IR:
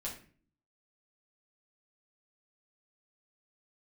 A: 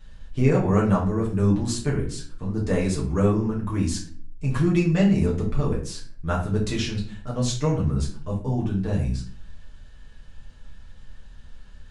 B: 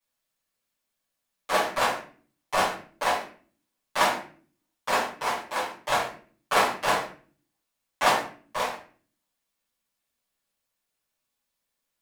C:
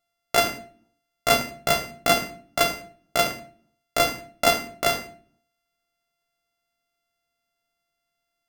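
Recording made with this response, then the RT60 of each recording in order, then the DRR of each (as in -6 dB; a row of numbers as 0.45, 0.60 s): A; 0.45, 0.45, 0.45 s; -4.5, -13.5, 4.0 dB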